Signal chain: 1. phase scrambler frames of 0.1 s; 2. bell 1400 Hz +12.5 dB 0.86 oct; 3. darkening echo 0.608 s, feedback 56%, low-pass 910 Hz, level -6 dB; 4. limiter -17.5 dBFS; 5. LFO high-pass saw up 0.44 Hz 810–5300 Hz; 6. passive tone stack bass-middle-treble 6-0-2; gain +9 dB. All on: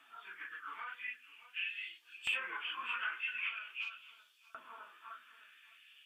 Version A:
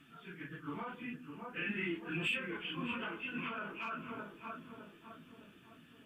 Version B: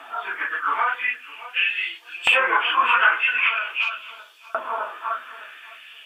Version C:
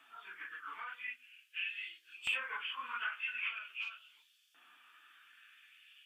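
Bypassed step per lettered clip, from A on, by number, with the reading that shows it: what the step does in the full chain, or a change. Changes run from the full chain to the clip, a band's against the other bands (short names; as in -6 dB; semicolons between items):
5, 500 Hz band +17.5 dB; 6, 500 Hz band +10.0 dB; 3, momentary loudness spread change +3 LU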